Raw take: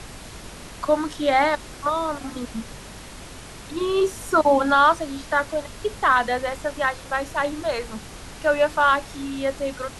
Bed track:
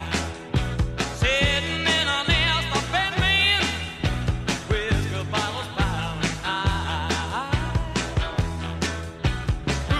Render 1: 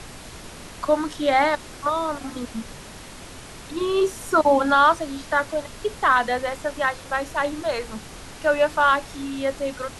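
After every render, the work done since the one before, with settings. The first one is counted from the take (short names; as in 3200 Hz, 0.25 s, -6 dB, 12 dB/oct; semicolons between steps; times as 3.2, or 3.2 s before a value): de-hum 50 Hz, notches 4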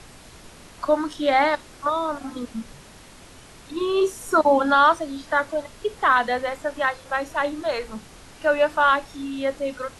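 noise print and reduce 6 dB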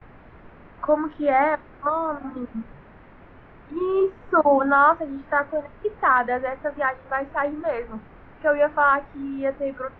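gate with hold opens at -36 dBFS; LPF 2000 Hz 24 dB/oct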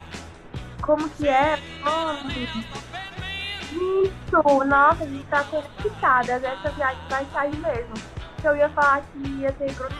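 add bed track -11.5 dB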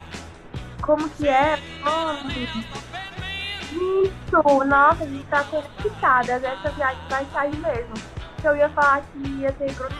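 gain +1 dB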